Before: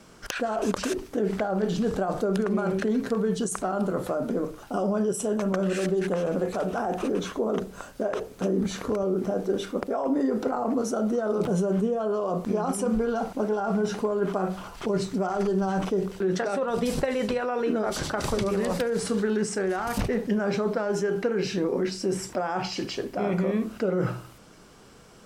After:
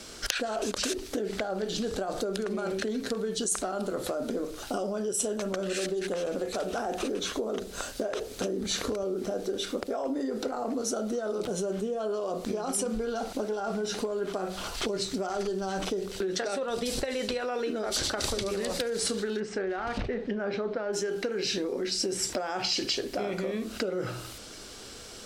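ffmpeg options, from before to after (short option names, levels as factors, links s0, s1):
-filter_complex "[0:a]asplit=3[s0][s1][s2];[s0]afade=t=out:st=19.39:d=0.02[s3];[s1]lowpass=2400,afade=t=in:st=19.39:d=0.02,afade=t=out:st=20.92:d=0.02[s4];[s2]afade=t=in:st=20.92:d=0.02[s5];[s3][s4][s5]amix=inputs=3:normalize=0,equalizer=f=160:t=o:w=0.67:g=-12,equalizer=f=1000:t=o:w=0.67:g=-6,equalizer=f=4000:t=o:w=0.67:g=6,acompressor=threshold=0.0178:ratio=6,equalizer=f=7700:t=o:w=2.1:g=6,volume=2"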